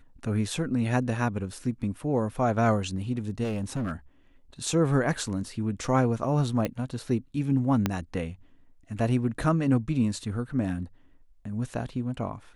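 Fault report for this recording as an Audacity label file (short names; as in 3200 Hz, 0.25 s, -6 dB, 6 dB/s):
3.430000	3.920000	clipped -25.5 dBFS
6.650000	6.650000	pop -15 dBFS
7.860000	7.860000	pop -10 dBFS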